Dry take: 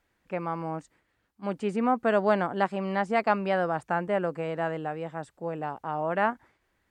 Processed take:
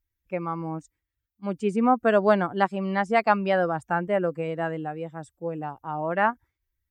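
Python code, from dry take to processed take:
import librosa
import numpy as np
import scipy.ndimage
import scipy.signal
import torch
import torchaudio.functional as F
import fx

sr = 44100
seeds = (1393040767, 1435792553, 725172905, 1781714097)

y = fx.bin_expand(x, sr, power=1.5)
y = F.gain(torch.from_numpy(y), 5.5).numpy()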